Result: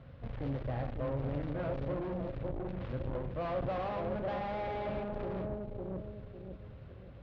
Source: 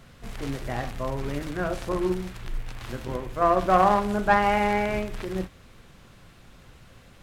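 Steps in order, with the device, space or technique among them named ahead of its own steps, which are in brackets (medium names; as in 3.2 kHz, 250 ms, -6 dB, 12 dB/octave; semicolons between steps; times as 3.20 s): analogue delay pedal into a guitar amplifier (bucket-brigade echo 552 ms, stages 2048, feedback 34%, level -4 dB; valve stage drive 33 dB, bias 0.55; cabinet simulation 80–4200 Hz, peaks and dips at 200 Hz -9 dB, 380 Hz -6 dB, 540 Hz +7 dB); tilt EQ -3.5 dB/octave; trim -4 dB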